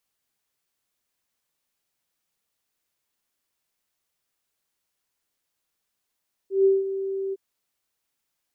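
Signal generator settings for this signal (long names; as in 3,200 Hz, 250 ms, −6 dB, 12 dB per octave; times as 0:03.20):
note with an ADSR envelope sine 388 Hz, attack 150 ms, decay 185 ms, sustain −12 dB, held 0.83 s, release 31 ms −13.5 dBFS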